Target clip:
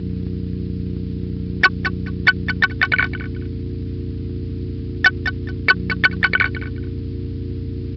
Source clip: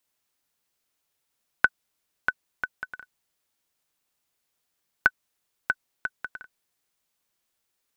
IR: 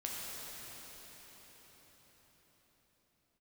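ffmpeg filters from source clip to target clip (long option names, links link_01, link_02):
-filter_complex "[0:a]highpass=1200,aeval=exprs='val(0)+0.00224*(sin(2*PI*60*n/s)+sin(2*PI*2*60*n/s)/2+sin(2*PI*3*60*n/s)/3+sin(2*PI*4*60*n/s)/4+sin(2*PI*5*60*n/s)/5)':channel_layout=same,asplit=4[link_01][link_02][link_03][link_04];[link_02]asetrate=33038,aresample=44100,atempo=1.33484,volume=-16dB[link_05];[link_03]asetrate=52444,aresample=44100,atempo=0.840896,volume=-8dB[link_06];[link_04]asetrate=66075,aresample=44100,atempo=0.66742,volume=-3dB[link_07];[link_01][link_05][link_06][link_07]amix=inputs=4:normalize=0,aeval=exprs='(tanh(31.6*val(0)+0.65)-tanh(0.65))/31.6':channel_layout=same,asplit=2[link_08][link_09];[link_09]aecho=0:1:214|428:0.106|0.0169[link_10];[link_08][link_10]amix=inputs=2:normalize=0,aresample=11025,aresample=44100,alimiter=level_in=34dB:limit=-1dB:release=50:level=0:latency=1,volume=-1dB" -ar 32000 -c:a libspeex -b:a 36k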